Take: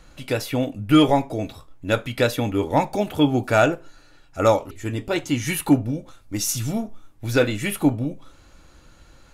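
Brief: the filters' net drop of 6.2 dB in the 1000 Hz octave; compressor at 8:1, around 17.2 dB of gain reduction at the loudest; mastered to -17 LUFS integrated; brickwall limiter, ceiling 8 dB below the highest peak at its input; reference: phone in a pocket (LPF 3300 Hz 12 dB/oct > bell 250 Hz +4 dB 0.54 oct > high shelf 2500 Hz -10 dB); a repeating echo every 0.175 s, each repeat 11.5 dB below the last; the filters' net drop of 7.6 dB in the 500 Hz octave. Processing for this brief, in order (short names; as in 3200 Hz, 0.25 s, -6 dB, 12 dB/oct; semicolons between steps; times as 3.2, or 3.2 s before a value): bell 500 Hz -8.5 dB; bell 1000 Hz -3.5 dB; compressor 8:1, threshold -31 dBFS; limiter -26.5 dBFS; LPF 3300 Hz 12 dB/oct; bell 250 Hz +4 dB 0.54 oct; high shelf 2500 Hz -10 dB; feedback echo 0.175 s, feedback 27%, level -11.5 dB; gain +21 dB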